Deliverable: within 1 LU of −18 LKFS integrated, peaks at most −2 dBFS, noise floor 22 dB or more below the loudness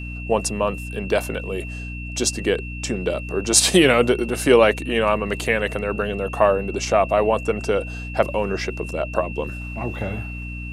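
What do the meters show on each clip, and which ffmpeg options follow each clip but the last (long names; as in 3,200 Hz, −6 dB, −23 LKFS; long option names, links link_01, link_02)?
mains hum 60 Hz; hum harmonics up to 300 Hz; level of the hum −29 dBFS; interfering tone 2,700 Hz; level of the tone −35 dBFS; integrated loudness −21.0 LKFS; sample peak −1.0 dBFS; target loudness −18.0 LKFS
→ -af "bandreject=frequency=60:width_type=h:width=4,bandreject=frequency=120:width_type=h:width=4,bandreject=frequency=180:width_type=h:width=4,bandreject=frequency=240:width_type=h:width=4,bandreject=frequency=300:width_type=h:width=4"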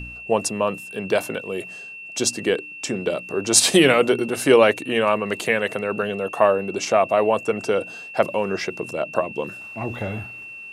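mains hum none found; interfering tone 2,700 Hz; level of the tone −35 dBFS
→ -af "bandreject=frequency=2700:width=30"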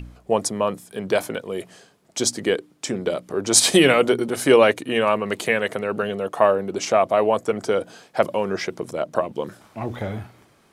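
interfering tone none found; integrated loudness −21.0 LKFS; sample peak −1.5 dBFS; target loudness −18.0 LKFS
→ -af "volume=3dB,alimiter=limit=-2dB:level=0:latency=1"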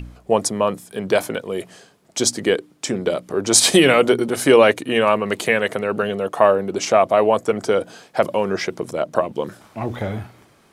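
integrated loudness −18.5 LKFS; sample peak −2.0 dBFS; background noise floor −55 dBFS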